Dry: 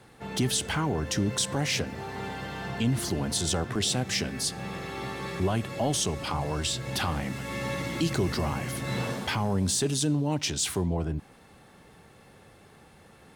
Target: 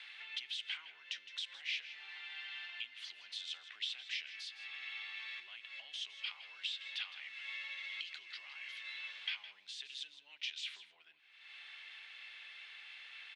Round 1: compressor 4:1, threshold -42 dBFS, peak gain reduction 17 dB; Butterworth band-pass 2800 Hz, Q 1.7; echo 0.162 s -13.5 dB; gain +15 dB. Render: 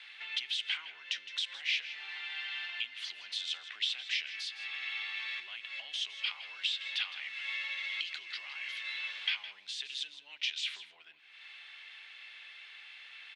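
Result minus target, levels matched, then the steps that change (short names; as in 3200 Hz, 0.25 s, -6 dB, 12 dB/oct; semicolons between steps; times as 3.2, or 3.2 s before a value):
compressor: peak gain reduction -7 dB
change: compressor 4:1, threshold -51.5 dBFS, peak gain reduction 24 dB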